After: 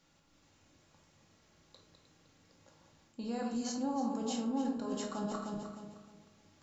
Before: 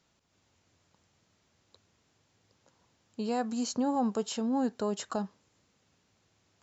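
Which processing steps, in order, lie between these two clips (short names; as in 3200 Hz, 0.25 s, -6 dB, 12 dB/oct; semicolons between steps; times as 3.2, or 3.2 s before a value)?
regenerating reverse delay 0.154 s, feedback 54%, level -7 dB; reverse; compressor 5:1, threshold -38 dBFS, peak gain reduction 12.5 dB; reverse; shoebox room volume 630 m³, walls furnished, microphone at 2.3 m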